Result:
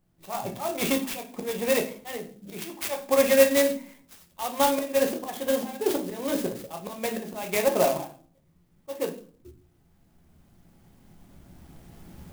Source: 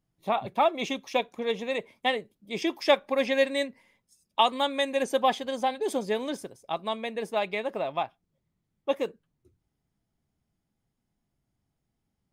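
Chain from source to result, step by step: recorder AGC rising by 7.3 dB/s; steep low-pass 10000 Hz 72 dB/oct; notches 50/100/150/200/250/300 Hz; in parallel at +2 dB: compressor 6:1, threshold -37 dBFS, peak gain reduction 19.5 dB; on the sum: auto swell 0.243 s; reverb RT60 0.45 s, pre-delay 6 ms, DRR 2.5 dB; clock jitter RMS 0.058 ms

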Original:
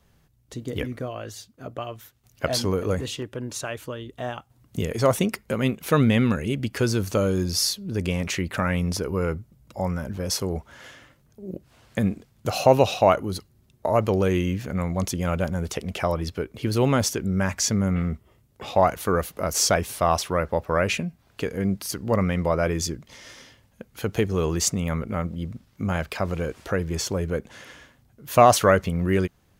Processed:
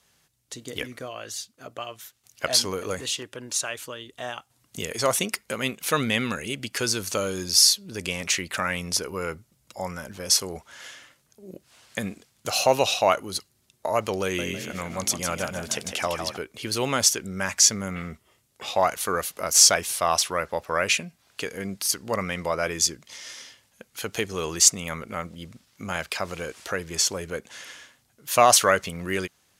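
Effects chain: LPF 10000 Hz 12 dB/oct; tilt +3.5 dB/oct; 14.23–16.37 frequency-shifting echo 0.155 s, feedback 40%, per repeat +40 Hz, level -7 dB; gain -1 dB

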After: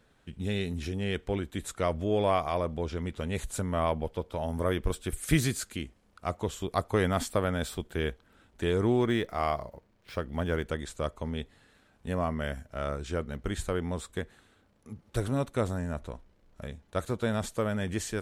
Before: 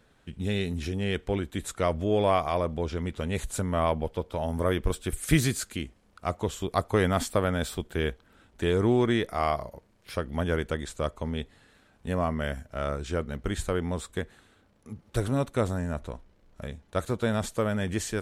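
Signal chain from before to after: 8.92–10.67 median filter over 5 samples; gain -2.5 dB

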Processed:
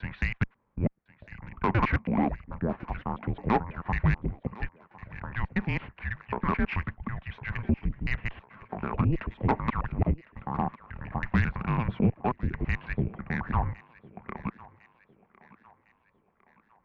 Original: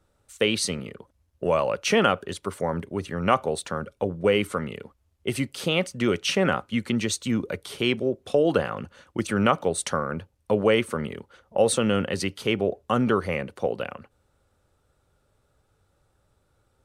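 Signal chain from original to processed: slices in reverse order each 0.109 s, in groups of 7; mistuned SSB -350 Hz 310–2500 Hz; tube stage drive 15 dB, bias 0.3; on a send: thinning echo 1.055 s, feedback 49%, high-pass 260 Hz, level -19 dB

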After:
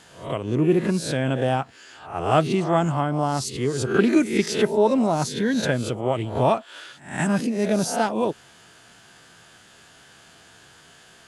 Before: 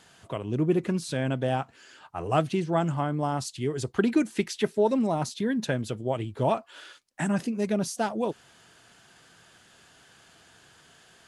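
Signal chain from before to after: spectral swells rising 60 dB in 0.45 s; gain +4 dB

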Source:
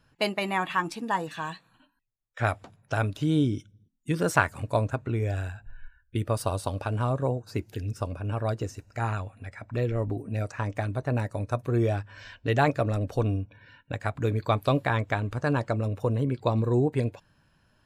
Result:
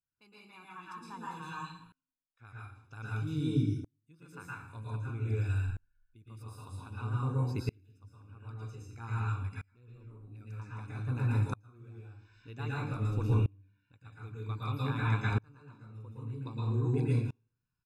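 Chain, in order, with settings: comb 0.8 ms, depth 86%; reverb RT60 0.60 s, pre-delay 0.108 s, DRR -5 dB; dB-ramp tremolo swelling 0.52 Hz, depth 32 dB; gain -9 dB

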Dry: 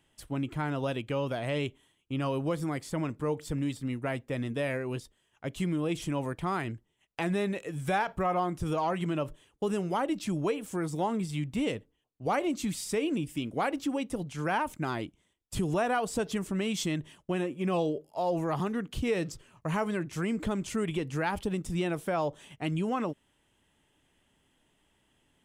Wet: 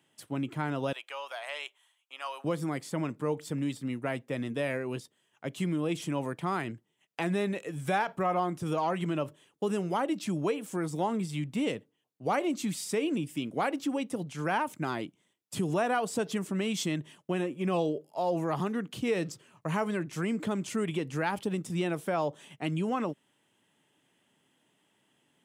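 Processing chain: HPF 130 Hz 24 dB/oct, from 0.93 s 750 Hz, from 2.44 s 130 Hz

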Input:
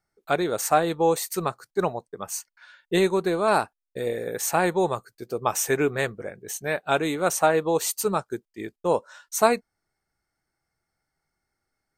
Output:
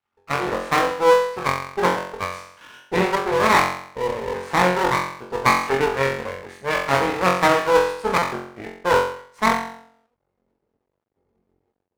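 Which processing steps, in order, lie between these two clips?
ripple EQ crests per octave 0.92, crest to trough 9 dB; flutter echo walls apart 3.8 m, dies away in 0.62 s; low-pass sweep 1200 Hz -> 390 Hz, 9.4–10.6; half-wave rectifier; AGC gain up to 13 dB; HPF 95 Hz 6 dB/oct; high shelf 3100 Hz +11.5 dB; stuck buffer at 8.18, samples 256, times 6; gain -1 dB

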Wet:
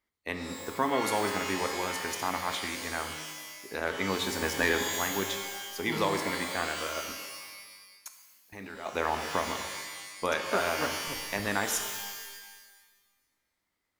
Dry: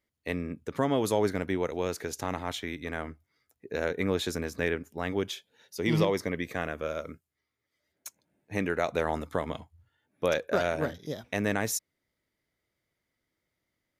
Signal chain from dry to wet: harmonic-percussive split harmonic -4 dB; 7.1–8.86 level quantiser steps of 21 dB; graphic EQ 125/500/1000 Hz -9/-5/+7 dB; 4.42–4.85 sample leveller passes 2; 11.05–11.47 backlash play -29.5 dBFS; shimmer reverb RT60 1.3 s, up +12 st, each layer -2 dB, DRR 6 dB

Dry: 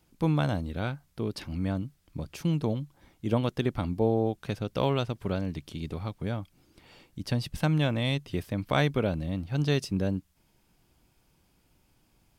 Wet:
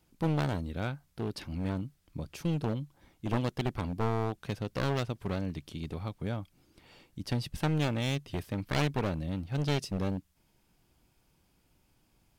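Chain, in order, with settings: one-sided fold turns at -25.5 dBFS; gain -2.5 dB

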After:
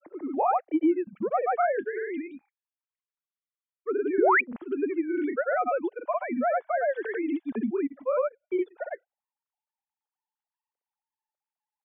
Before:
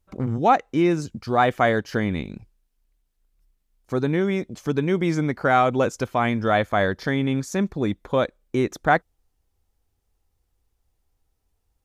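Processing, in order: sine-wave speech; high shelf 2100 Hz -10 dB; compressor 2.5:1, threshold -23 dBFS, peak gain reduction 8.5 dB; grains, pitch spread up and down by 0 st; painted sound rise, 4.18–4.41, 280–2600 Hz -20 dBFS

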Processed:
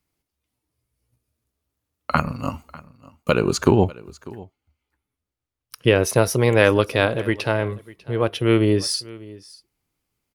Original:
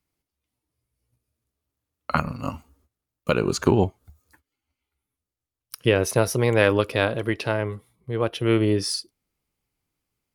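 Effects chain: 3.76–5.88 high shelf 5100 Hz -8 dB; echo 0.596 s -21 dB; gain +3 dB

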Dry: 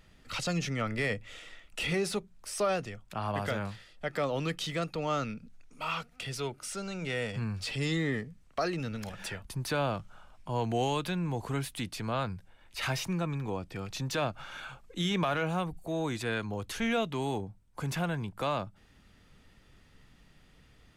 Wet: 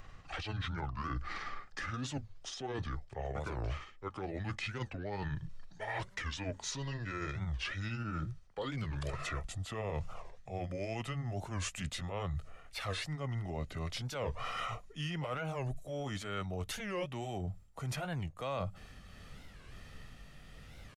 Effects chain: gliding pitch shift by -9 st ending unshifted; reverse; compressor 12:1, threshold -43 dBFS, peak gain reduction 18 dB; reverse; comb 1.6 ms, depth 35%; record warp 45 rpm, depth 250 cents; gain +7.5 dB

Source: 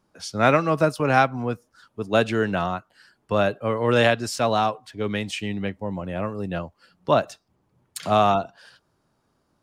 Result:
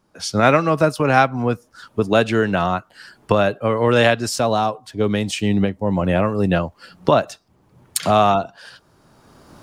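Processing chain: recorder AGC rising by 17 dB/s; 4.29–5.87 bell 2100 Hz -6.5 dB 1.5 oct; gain +3.5 dB

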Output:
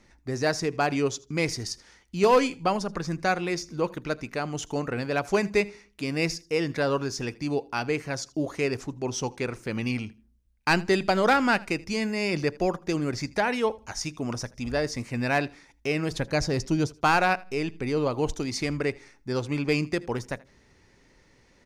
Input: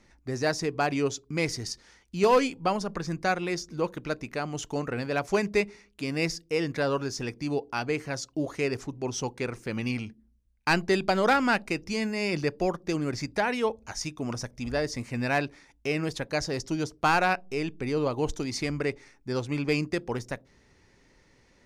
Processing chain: 16.11–16.87 low shelf 230 Hz +8 dB; feedback echo 80 ms, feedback 21%, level -22.5 dB; gain +1.5 dB

